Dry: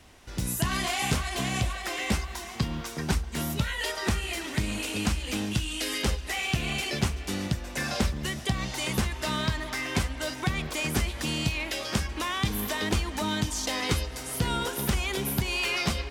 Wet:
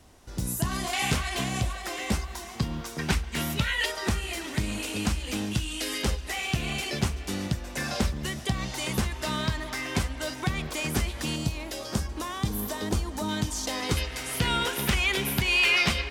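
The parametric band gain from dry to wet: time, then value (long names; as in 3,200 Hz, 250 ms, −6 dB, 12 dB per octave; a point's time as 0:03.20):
parametric band 2,400 Hz 1.5 octaves
−7.5 dB
from 0:00.93 +2.5 dB
from 0:01.44 −3.5 dB
from 0:02.99 +6.5 dB
from 0:03.86 −1.5 dB
from 0:11.36 −10 dB
from 0:13.29 −3.5 dB
from 0:13.97 +8 dB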